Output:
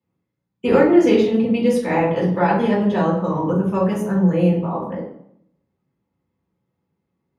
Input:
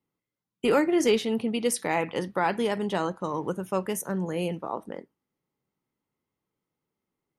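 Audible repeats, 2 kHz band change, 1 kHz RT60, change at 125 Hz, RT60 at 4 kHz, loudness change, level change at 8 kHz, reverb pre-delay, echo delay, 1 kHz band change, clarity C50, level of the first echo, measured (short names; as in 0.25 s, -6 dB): none, +5.0 dB, 0.70 s, +15.0 dB, 0.50 s, +9.5 dB, n/a, 3 ms, none, +7.0 dB, 2.5 dB, none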